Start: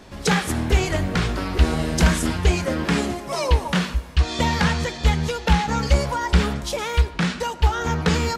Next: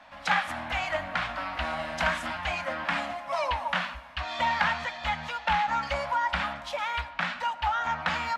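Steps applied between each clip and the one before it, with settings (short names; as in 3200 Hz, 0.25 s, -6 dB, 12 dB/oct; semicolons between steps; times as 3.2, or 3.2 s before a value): Chebyshev band-stop 270–620 Hz, order 2; three-band isolator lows -21 dB, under 470 Hz, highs -19 dB, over 3300 Hz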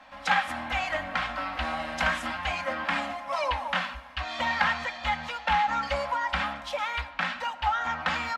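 comb 3.8 ms, depth 44%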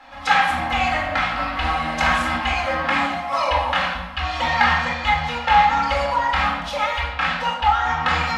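reverb RT60 0.95 s, pre-delay 23 ms, DRR -0.5 dB; gain +3.5 dB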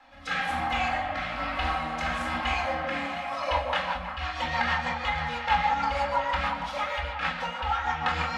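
rotary speaker horn 1.1 Hz, later 6.3 Hz, at 2.97; delay with a stepping band-pass 0.178 s, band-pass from 620 Hz, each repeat 0.7 oct, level -2.5 dB; gain -6 dB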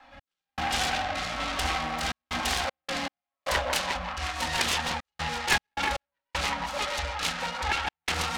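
self-modulated delay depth 0.59 ms; step gate "x..xxxxxxxx.xx." 78 bpm -60 dB; gain +1.5 dB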